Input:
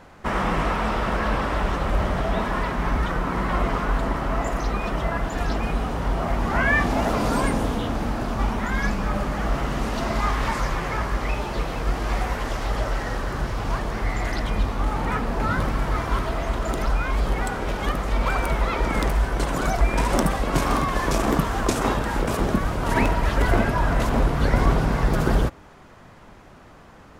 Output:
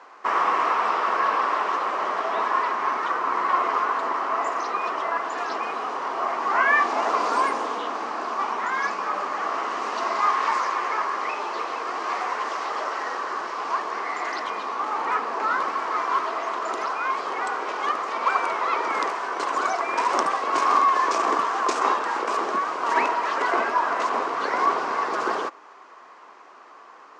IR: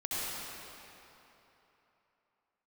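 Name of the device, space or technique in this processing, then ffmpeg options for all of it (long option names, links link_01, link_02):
phone speaker on a table: -af "highpass=frequency=380:width=0.5412,highpass=frequency=380:width=1.3066,equalizer=frequency=560:width_type=q:width=4:gain=-5,equalizer=frequency=1100:width_type=q:width=4:gain=10,equalizer=frequency=3500:width_type=q:width=4:gain=-4,lowpass=frequency=6800:width=0.5412,lowpass=frequency=6800:width=1.3066"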